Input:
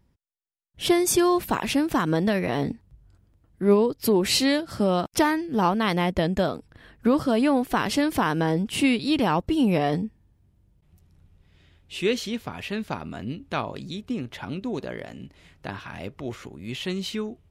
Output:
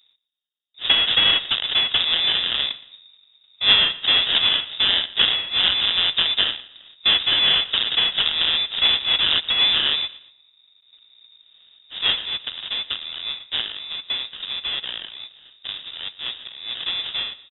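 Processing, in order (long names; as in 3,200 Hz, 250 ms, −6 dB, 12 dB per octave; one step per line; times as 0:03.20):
sample-rate reduction 1,400 Hz, jitter 20%
voice inversion scrambler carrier 3,700 Hz
repeating echo 117 ms, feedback 37%, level −18.5 dB
level +2.5 dB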